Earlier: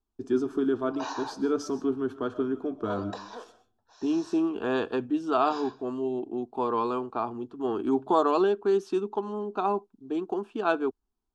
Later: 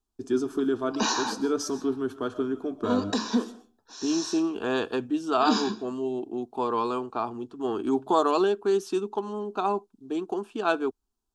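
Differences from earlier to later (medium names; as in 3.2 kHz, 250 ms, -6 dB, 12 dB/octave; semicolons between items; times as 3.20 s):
background: remove ladder high-pass 520 Hz, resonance 45%; master: remove low-pass 2.4 kHz 6 dB/octave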